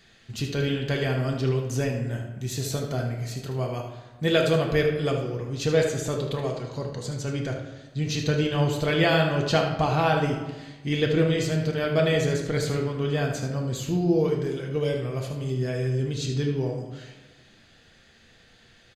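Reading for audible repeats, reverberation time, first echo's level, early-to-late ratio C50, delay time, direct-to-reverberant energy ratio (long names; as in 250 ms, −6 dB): 1, 1.2 s, −9.0 dB, 4.5 dB, 76 ms, 0.5 dB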